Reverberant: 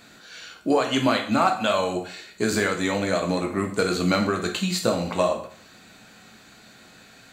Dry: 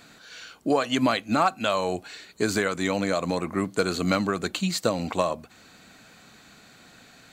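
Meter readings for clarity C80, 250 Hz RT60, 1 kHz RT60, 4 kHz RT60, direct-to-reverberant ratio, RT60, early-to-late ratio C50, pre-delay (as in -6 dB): 12.5 dB, 0.50 s, 0.50 s, 0.50 s, 2.0 dB, 0.50 s, 8.5 dB, 4 ms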